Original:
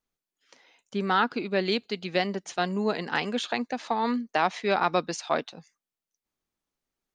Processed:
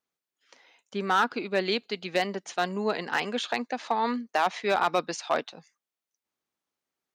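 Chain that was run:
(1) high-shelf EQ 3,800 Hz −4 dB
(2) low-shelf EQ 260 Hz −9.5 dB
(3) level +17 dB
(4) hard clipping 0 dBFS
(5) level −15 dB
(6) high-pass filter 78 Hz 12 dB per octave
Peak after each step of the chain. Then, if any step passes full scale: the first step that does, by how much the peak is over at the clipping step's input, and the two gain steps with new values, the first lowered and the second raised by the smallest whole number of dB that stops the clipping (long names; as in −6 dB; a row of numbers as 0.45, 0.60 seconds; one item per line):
−10.5, −11.5, +5.5, 0.0, −15.0, −13.5 dBFS
step 3, 5.5 dB
step 3 +11 dB, step 5 −9 dB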